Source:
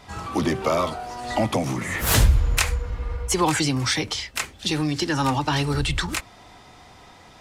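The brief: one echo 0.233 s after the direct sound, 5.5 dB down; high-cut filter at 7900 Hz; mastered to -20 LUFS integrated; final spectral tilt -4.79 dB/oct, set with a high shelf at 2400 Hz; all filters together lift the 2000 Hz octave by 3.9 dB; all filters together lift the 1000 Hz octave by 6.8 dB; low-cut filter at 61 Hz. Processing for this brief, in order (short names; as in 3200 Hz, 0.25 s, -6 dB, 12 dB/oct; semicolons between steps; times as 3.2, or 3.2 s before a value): HPF 61 Hz; LPF 7900 Hz; bell 1000 Hz +8 dB; bell 2000 Hz +4.5 dB; high shelf 2400 Hz -4.5 dB; echo 0.233 s -5.5 dB; gain +1 dB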